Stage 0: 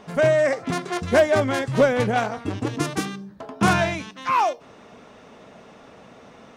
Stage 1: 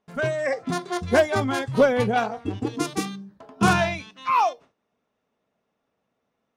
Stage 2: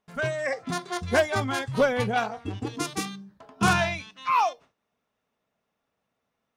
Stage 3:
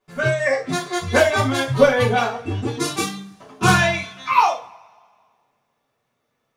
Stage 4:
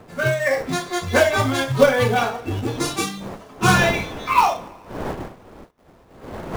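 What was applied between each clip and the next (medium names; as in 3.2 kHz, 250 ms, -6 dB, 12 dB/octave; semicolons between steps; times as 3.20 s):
gate with hold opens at -33 dBFS; spectral noise reduction 9 dB
peaking EQ 340 Hz -6 dB 2.4 oct
two-slope reverb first 0.3 s, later 1.8 s, from -28 dB, DRR -9.5 dB; trim -2.5 dB
wind noise 630 Hz -34 dBFS; in parallel at -5 dB: companded quantiser 4-bit; on the sum: trim -4.5 dB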